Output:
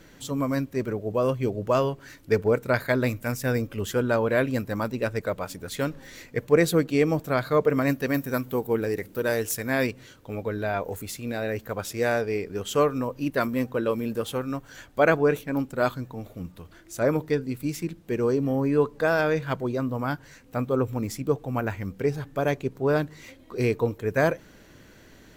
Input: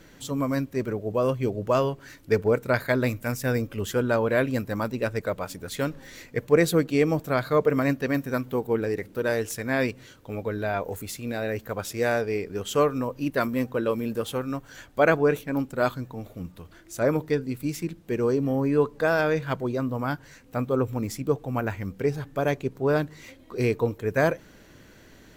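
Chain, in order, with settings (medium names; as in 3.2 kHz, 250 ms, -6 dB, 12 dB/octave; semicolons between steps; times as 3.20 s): 7.87–9.87 s: treble shelf 8.6 kHz +10.5 dB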